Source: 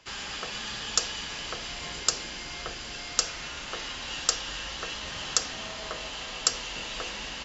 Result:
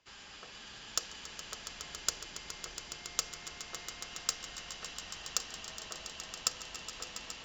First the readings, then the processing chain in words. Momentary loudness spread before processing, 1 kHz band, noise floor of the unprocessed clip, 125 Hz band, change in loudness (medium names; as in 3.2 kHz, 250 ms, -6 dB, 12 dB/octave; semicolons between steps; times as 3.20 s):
8 LU, -10.0 dB, -39 dBFS, -11.0 dB, -8.5 dB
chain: echo with a slow build-up 139 ms, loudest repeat 5, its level -9 dB; Chebyshev shaper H 4 -33 dB, 7 -21 dB, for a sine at -2.5 dBFS; trim -6.5 dB